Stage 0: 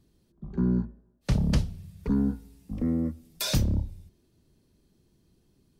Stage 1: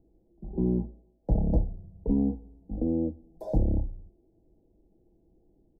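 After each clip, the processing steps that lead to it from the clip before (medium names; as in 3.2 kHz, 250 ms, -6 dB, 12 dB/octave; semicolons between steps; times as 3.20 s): elliptic low-pass 790 Hz, stop band 40 dB; peaking EQ 150 Hz -14 dB 0.93 oct; comb 6.1 ms, depth 40%; trim +5.5 dB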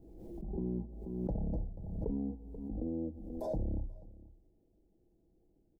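peak limiter -21 dBFS, peak gain reduction 7.5 dB; delay 485 ms -20 dB; swell ahead of each attack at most 37 dB/s; trim -7.5 dB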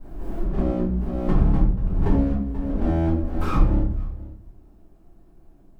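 comb filter that takes the minimum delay 0.76 ms; simulated room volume 53 m³, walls mixed, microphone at 2 m; trim +5.5 dB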